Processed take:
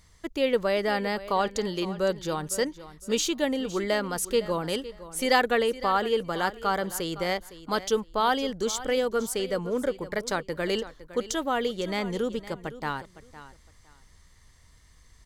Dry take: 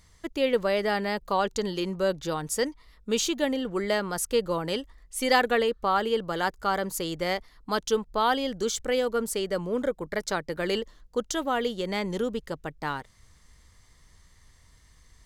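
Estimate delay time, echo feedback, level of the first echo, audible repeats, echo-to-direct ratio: 0.51 s, 21%, -15.5 dB, 2, -15.5 dB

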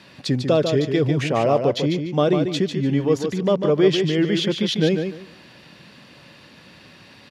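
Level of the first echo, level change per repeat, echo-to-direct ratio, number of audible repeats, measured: -6.5 dB, -13.5 dB, -6.5 dB, 3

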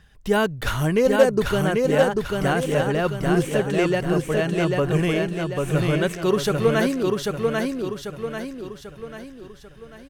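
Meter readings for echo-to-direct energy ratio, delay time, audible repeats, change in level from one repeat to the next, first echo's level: -2.0 dB, 0.792 s, 5, -6.5 dB, -3.0 dB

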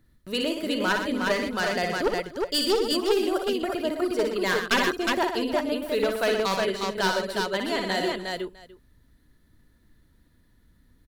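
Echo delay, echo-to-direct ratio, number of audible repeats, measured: 58 ms, 0.0 dB, 6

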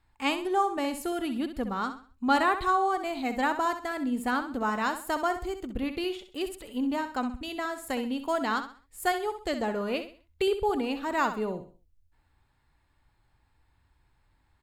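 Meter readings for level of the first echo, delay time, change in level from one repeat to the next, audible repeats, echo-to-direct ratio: -10.0 dB, 65 ms, -9.5 dB, 3, -9.5 dB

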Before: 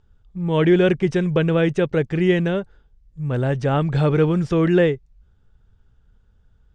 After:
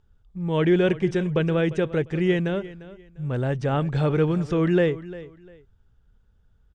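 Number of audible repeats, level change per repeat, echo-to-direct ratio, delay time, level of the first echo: 2, -11.5 dB, -16.5 dB, 0.349 s, -17.0 dB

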